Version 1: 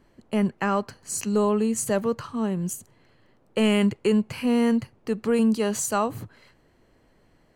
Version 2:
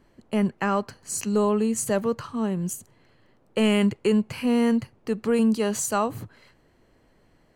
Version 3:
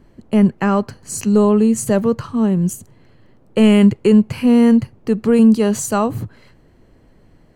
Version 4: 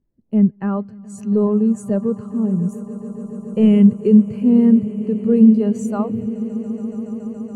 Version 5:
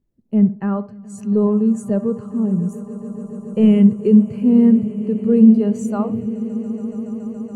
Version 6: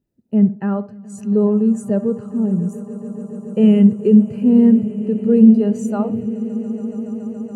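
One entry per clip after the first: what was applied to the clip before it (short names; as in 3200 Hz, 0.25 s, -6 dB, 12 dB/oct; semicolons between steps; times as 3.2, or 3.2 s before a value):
nothing audible
low shelf 390 Hz +9.5 dB; gain +3.5 dB
swelling echo 0.141 s, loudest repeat 8, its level -16.5 dB; spectral expander 1.5:1; gain -1 dB
tape echo 66 ms, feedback 33%, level -13.5 dB, low-pass 1600 Hz
notch comb 1100 Hz; gain +1.5 dB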